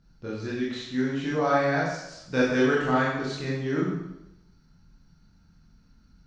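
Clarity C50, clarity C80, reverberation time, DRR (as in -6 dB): 0.5 dB, 3.5 dB, 0.85 s, -6.5 dB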